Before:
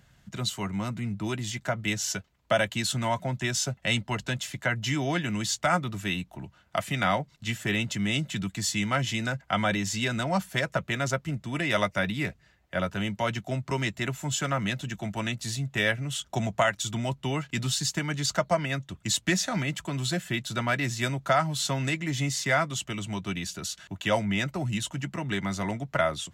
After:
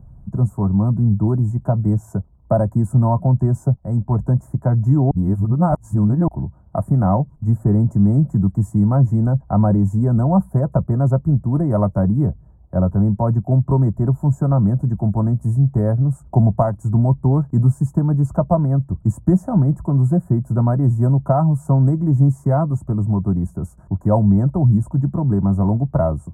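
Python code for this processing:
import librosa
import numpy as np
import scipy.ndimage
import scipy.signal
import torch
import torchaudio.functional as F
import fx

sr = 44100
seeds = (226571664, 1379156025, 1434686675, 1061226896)

y = fx.edit(x, sr, fx.fade_in_from(start_s=3.76, length_s=0.45, floor_db=-12.0),
    fx.reverse_span(start_s=5.11, length_s=1.17), tone=tone)
y = scipy.signal.sosfilt(scipy.signal.cheby1(3, 1.0, [1000.0, 9200.0], 'bandstop', fs=sr, output='sos'), y)
y = fx.riaa(y, sr, side='playback')
y = F.gain(torch.from_numpy(y), 6.0).numpy()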